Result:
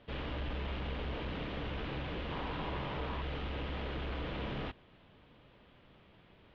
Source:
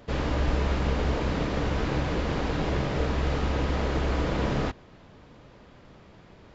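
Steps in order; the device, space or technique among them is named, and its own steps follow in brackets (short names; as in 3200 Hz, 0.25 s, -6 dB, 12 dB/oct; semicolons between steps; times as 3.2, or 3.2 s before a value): overdriven synthesiser ladder filter (soft clip -21.5 dBFS, distortion -16 dB; ladder low-pass 3700 Hz, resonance 50%); 2.31–3.22 bell 990 Hz +8 dB 0.58 oct; gain -1 dB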